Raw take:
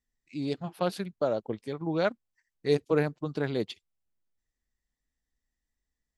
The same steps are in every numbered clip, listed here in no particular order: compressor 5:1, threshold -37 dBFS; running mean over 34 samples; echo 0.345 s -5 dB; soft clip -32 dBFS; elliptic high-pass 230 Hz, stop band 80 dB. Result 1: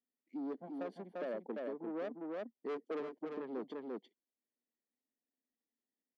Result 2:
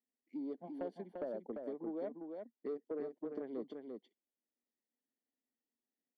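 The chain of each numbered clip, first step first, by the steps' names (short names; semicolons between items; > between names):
running mean > soft clip > echo > compressor > elliptic high-pass; running mean > compressor > elliptic high-pass > soft clip > echo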